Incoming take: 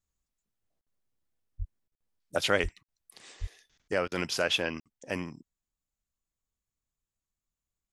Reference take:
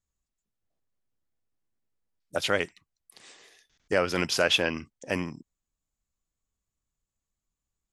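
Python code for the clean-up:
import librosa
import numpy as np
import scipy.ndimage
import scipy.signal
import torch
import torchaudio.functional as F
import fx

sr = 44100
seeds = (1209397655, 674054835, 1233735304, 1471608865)

y = fx.fix_deplosive(x, sr, at_s=(1.58, 2.62, 3.4))
y = fx.fix_interpolate(y, sr, at_s=(0.81, 1.95, 2.83, 4.8), length_ms=57.0)
y = fx.fix_interpolate(y, sr, at_s=(1.88, 4.08), length_ms=36.0)
y = fx.fix_level(y, sr, at_s=3.82, step_db=4.5)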